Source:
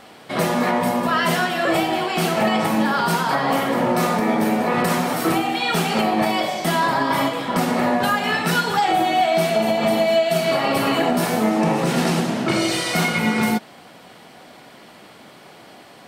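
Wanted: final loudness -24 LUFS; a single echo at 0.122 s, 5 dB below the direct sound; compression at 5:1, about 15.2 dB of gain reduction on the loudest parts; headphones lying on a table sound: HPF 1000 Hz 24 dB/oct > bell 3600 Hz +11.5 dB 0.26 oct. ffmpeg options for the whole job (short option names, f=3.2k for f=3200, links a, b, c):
-af "acompressor=threshold=-33dB:ratio=5,highpass=f=1k:w=0.5412,highpass=f=1k:w=1.3066,equalizer=f=3.6k:t=o:w=0.26:g=11.5,aecho=1:1:122:0.562,volume=12dB"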